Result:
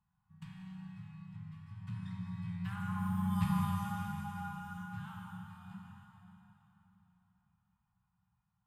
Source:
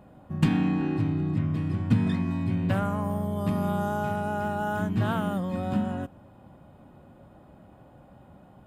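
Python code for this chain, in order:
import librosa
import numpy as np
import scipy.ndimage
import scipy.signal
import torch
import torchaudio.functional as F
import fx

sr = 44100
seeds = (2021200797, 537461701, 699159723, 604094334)

y = fx.doppler_pass(x, sr, speed_mps=6, closest_m=1.4, pass_at_s=3.43)
y = scipy.signal.sosfilt(scipy.signal.ellip(3, 1.0, 40, [180.0, 920.0], 'bandstop', fs=sr, output='sos'), y)
y = fx.rev_plate(y, sr, seeds[0], rt60_s=3.7, hf_ratio=0.85, predelay_ms=0, drr_db=-1.0)
y = y * 10.0 ** (-3.0 / 20.0)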